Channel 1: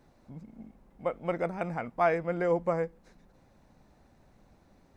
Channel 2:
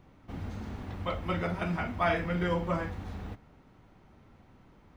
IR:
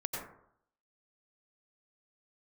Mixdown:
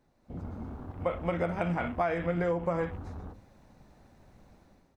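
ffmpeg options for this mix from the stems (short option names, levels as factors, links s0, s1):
-filter_complex "[0:a]dynaudnorm=f=110:g=7:m=3.55,volume=0.398,asplit=2[s0][s1];[1:a]alimiter=limit=0.0631:level=0:latency=1:release=32,bandreject=f=50:t=h:w=6,bandreject=f=100:t=h:w=6,bandreject=f=150:t=h:w=6,bandreject=f=200:t=h:w=6,afwtdn=0.00562,adelay=7.2,volume=1[s2];[s1]apad=whole_len=219293[s3];[s2][s3]sidechaingate=range=0.0224:threshold=0.00158:ratio=16:detection=peak[s4];[s0][s4]amix=inputs=2:normalize=0,acompressor=threshold=0.0562:ratio=10"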